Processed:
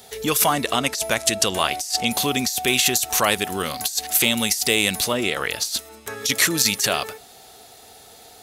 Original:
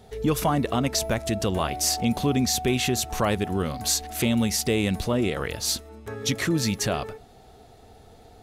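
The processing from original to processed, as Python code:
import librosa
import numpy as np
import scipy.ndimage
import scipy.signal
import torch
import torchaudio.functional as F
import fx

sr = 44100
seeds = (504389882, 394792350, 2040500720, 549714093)

y = fx.tilt_eq(x, sr, slope=4.0)
y = fx.over_compress(y, sr, threshold_db=-20.0, ratio=-0.5)
y = fx.lowpass(y, sr, hz=11000.0, slope=12, at=(0.53, 2.12))
y = fx.high_shelf(y, sr, hz=5700.0, db=-7.5, at=(5.13, 5.77))
y = y * librosa.db_to_amplitude(2.5)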